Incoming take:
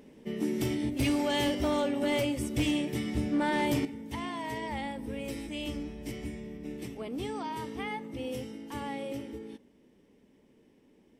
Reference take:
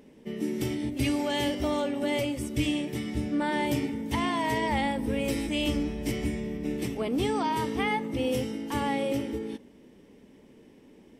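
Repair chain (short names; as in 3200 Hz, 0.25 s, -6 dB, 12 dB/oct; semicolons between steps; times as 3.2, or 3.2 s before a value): clip repair -22.5 dBFS; gain 0 dB, from 3.85 s +8.5 dB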